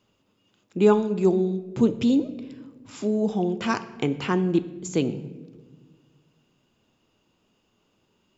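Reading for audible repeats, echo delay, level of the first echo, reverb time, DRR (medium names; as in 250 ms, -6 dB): no echo, no echo, no echo, 1.4 s, 11.5 dB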